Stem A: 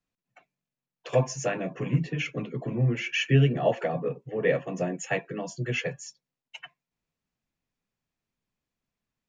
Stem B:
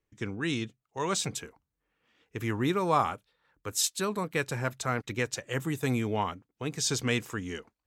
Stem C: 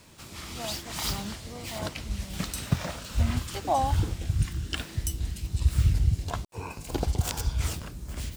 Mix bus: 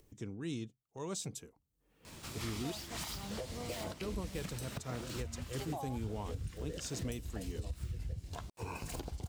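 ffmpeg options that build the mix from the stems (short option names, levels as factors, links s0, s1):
-filter_complex "[0:a]acompressor=threshold=0.02:ratio=6,bandpass=f=430:t=q:w=0.95:csg=0,adelay=2250,volume=0.944[s0];[1:a]equalizer=f=1700:w=0.56:g=-13,volume=0.473,asplit=3[s1][s2][s3];[s1]atrim=end=2.72,asetpts=PTS-STARTPTS,afade=t=out:st=2.716:d=0.004:c=hsin[s4];[s2]atrim=start=2.72:end=4.01,asetpts=PTS-STARTPTS,volume=0[s5];[s3]atrim=start=4.01,asetpts=PTS-STARTPTS,afade=t=in:d=0.004:c=hsin[s6];[s4][s5][s6]concat=n=3:v=0:a=1[s7];[2:a]adelay=2050,volume=0.944[s8];[s0][s8]amix=inputs=2:normalize=0,agate=range=0.178:threshold=0.00178:ratio=16:detection=peak,acompressor=threshold=0.0141:ratio=10,volume=1[s9];[s7][s9]amix=inputs=2:normalize=0,acompressor=mode=upward:threshold=0.00501:ratio=2.5,alimiter=level_in=1.78:limit=0.0631:level=0:latency=1:release=291,volume=0.562"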